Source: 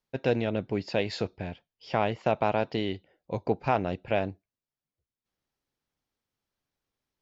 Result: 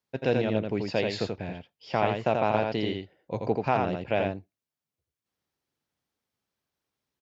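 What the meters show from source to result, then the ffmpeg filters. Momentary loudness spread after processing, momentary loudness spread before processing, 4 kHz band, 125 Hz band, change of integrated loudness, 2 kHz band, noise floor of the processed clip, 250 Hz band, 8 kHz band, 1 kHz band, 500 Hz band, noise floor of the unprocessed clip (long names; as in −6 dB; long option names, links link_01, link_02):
12 LU, 10 LU, +1.5 dB, +1.0 dB, +1.5 dB, +1.5 dB, below −85 dBFS, +1.5 dB, can't be measured, +1.5 dB, +1.5 dB, below −85 dBFS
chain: -filter_complex "[0:a]highpass=74,asplit=2[link_01][link_02];[link_02]aecho=0:1:84:0.631[link_03];[link_01][link_03]amix=inputs=2:normalize=0"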